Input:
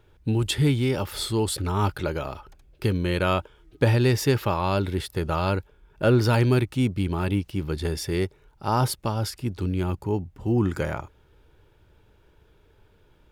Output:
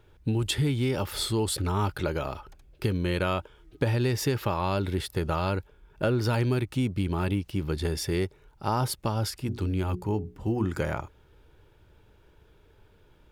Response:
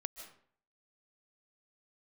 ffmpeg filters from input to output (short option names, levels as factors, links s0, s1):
-filter_complex "[0:a]asettb=1/sr,asplit=3[s0][s1][s2];[s0]atrim=end=9.404[s3];[s1]atrim=start=9.4:end=10.65,asetpts=PTS-STARTPTS,afade=t=in:d=0.004:c=qsin,afade=t=out:st=1.246:d=0.004:c=qsin,bandreject=f=60:t=h:w=6,bandreject=f=120:t=h:w=6,bandreject=f=180:t=h:w=6,bandreject=f=240:t=h:w=6,bandreject=f=300:t=h:w=6,bandreject=f=360:t=h:w=6,bandreject=f=420:t=h:w=6[s4];[s2]atrim=start=10.646[s5];[s3][s4]acrossfade=d=0.004:c1=hsin:c2=qsin[s6];[s6][s5]acrossfade=d=0.004:c1=qsin:c2=hsin,acompressor=threshold=0.0708:ratio=4"